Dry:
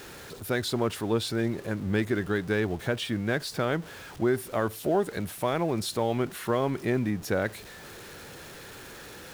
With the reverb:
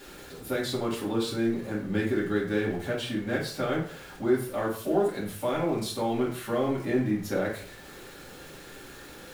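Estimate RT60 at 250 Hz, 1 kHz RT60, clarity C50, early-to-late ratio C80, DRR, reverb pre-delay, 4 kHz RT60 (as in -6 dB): 0.60 s, 0.50 s, 6.0 dB, 10.5 dB, -6.0 dB, 3 ms, 0.35 s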